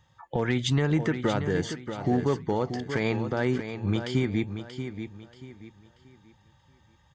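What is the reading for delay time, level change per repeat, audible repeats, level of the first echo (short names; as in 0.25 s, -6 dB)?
0.633 s, -10.0 dB, 3, -9.0 dB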